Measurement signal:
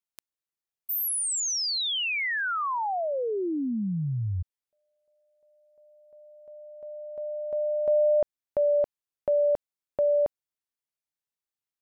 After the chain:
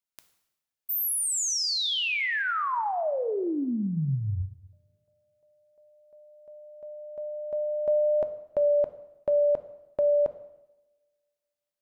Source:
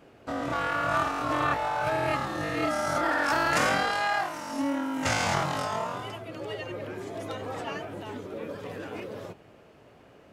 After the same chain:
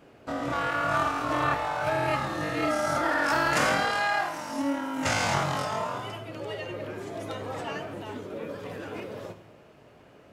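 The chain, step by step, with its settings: two-slope reverb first 0.89 s, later 2.4 s, from -28 dB, DRR 9 dB

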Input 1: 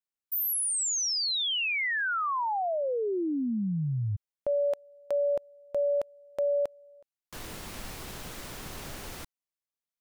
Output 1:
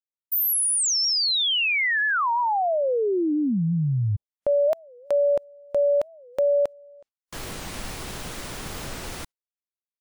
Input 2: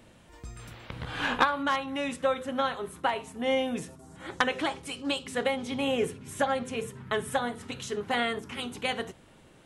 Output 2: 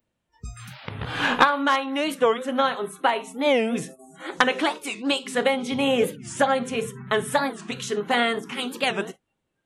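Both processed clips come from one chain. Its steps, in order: spectral noise reduction 29 dB; warped record 45 rpm, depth 250 cents; trim +6.5 dB

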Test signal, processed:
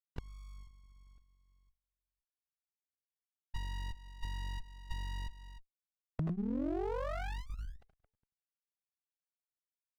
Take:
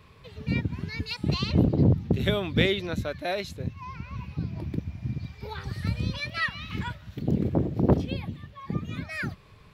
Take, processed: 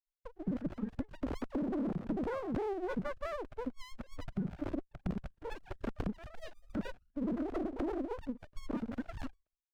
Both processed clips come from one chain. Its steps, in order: formants replaced by sine waves; spectral noise reduction 22 dB; expander -57 dBFS; steep low-pass 1.6 kHz 96 dB/octave; peak limiter -23.5 dBFS; compression, threshold -34 dBFS; sliding maximum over 33 samples; trim +2.5 dB

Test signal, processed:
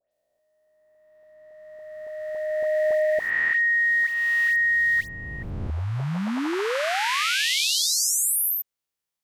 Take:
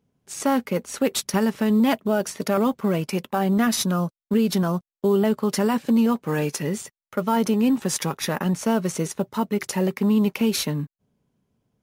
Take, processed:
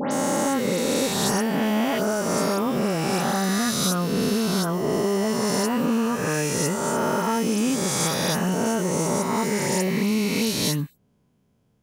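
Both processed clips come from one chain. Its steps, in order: reverse spectral sustain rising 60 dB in 2.63 s; compression, threshold -21 dBFS; phase dispersion highs, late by 120 ms, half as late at 2.6 kHz; trim +1.5 dB

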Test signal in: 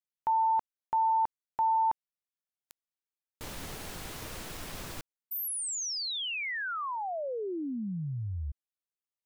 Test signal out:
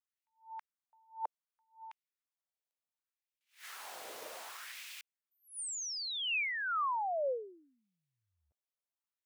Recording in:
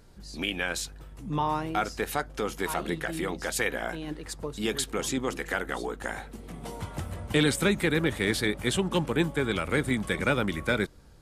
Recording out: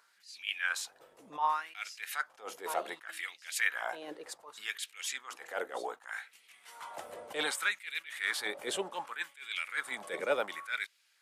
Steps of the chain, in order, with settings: LFO high-pass sine 0.66 Hz 500–2500 Hz; attacks held to a fixed rise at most 200 dB/s; trim -5.5 dB

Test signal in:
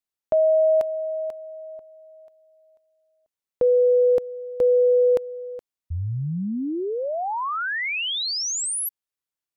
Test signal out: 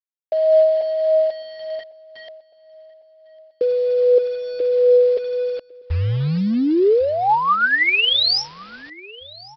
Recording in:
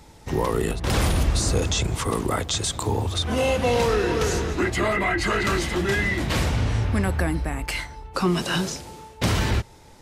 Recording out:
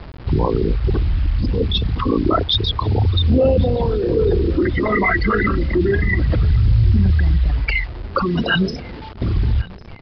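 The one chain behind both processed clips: resonances exaggerated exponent 3; in parallel at +1 dB: compressor with a negative ratio -24 dBFS, ratio -0.5; on the sum: phaser 0.29 Hz, delay 4.7 ms, feedback 43%; word length cut 6-bit, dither none; on a send: feedback delay 1102 ms, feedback 48%, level -23 dB; on the sum: resampled via 11.025 kHz

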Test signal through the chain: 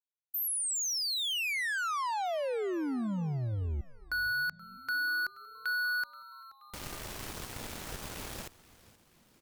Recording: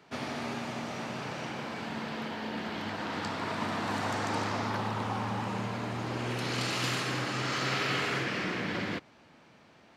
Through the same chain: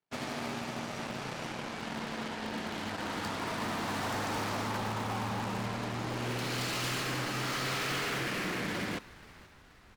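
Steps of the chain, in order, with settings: wavefolder -27 dBFS; Chebyshev shaper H 7 -17 dB, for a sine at -27 dBFS; frequency-shifting echo 478 ms, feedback 56%, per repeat -130 Hz, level -19.5 dB; trim -1 dB

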